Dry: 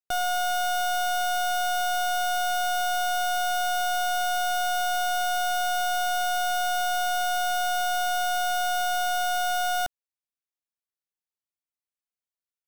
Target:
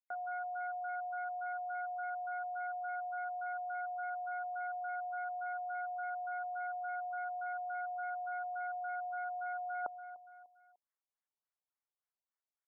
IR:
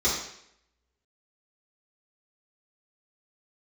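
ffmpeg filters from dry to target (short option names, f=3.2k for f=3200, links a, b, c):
-af "highpass=730,equalizer=f=3.7k:t=o:w=0.82:g=-13,aecho=1:1:298|596|894:0.0668|0.0261|0.0102,areverse,acompressor=threshold=-39dB:ratio=12,areverse,afftfilt=real='re*lt(b*sr/1024,990*pow(2400/990,0.5+0.5*sin(2*PI*3.5*pts/sr)))':imag='im*lt(b*sr/1024,990*pow(2400/990,0.5+0.5*sin(2*PI*3.5*pts/sr)))':win_size=1024:overlap=0.75,volume=4dB"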